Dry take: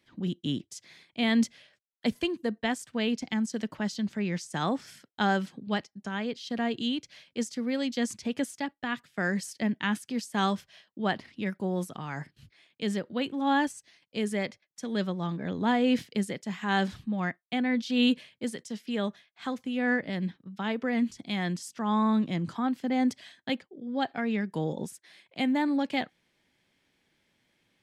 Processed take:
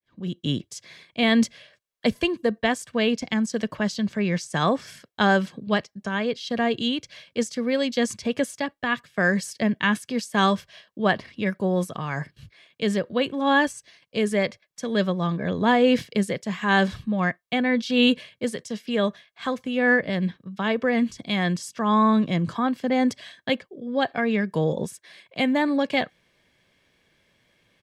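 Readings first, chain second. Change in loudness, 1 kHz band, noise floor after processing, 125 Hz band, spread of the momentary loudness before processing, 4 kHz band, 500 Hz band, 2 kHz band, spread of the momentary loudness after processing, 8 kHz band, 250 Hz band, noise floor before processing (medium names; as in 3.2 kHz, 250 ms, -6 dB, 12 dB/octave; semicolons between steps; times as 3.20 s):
+6.0 dB, +6.5 dB, -72 dBFS, +6.5 dB, 10 LU, +6.5 dB, +9.0 dB, +8.0 dB, 10 LU, +5.0 dB, +4.5 dB, -77 dBFS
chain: fade-in on the opening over 0.51 s; treble shelf 5.2 kHz -4.5 dB; comb 1.8 ms, depth 38%; trim +7.5 dB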